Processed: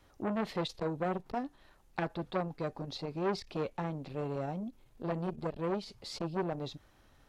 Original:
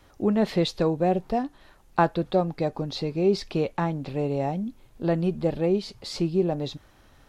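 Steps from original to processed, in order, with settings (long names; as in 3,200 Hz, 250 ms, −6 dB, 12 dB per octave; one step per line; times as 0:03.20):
saturating transformer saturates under 1,400 Hz
level −7.5 dB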